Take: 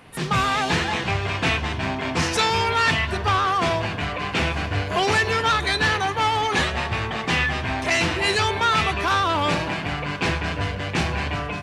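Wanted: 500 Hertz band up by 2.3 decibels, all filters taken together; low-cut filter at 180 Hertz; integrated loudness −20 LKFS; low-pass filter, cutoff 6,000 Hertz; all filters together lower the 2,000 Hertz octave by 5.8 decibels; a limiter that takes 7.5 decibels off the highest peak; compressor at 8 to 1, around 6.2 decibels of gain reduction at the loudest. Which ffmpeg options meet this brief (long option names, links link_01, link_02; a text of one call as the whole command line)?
ffmpeg -i in.wav -af "highpass=180,lowpass=6000,equalizer=frequency=500:width_type=o:gain=3.5,equalizer=frequency=2000:width_type=o:gain=-7.5,acompressor=threshold=-24dB:ratio=8,volume=10.5dB,alimiter=limit=-11.5dB:level=0:latency=1" out.wav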